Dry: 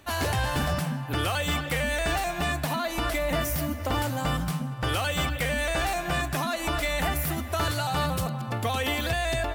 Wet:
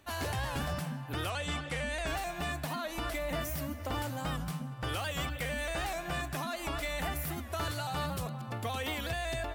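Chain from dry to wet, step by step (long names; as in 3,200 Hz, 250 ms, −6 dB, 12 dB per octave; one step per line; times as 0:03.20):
0:01.30–0:02.07: low-pass filter 9,900 Hz 24 dB per octave
wow of a warped record 78 rpm, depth 100 cents
level −8 dB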